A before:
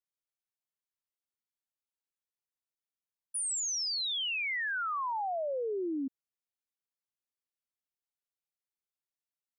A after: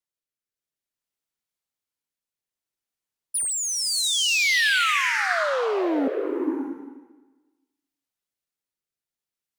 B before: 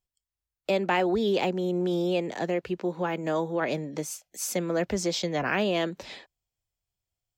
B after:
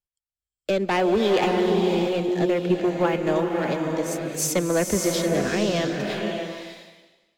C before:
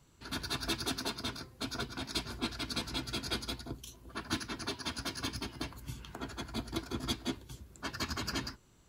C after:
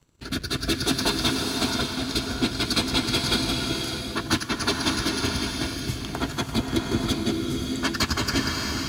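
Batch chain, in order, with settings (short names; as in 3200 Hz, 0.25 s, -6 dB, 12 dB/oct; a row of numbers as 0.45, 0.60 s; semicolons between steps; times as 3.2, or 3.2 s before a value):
transient shaper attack +3 dB, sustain -5 dB; sample leveller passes 2; rotary speaker horn 0.6 Hz; bloom reverb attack 0.61 s, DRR 2 dB; normalise peaks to -9 dBFS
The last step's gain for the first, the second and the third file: +9.5, -1.0, +5.5 dB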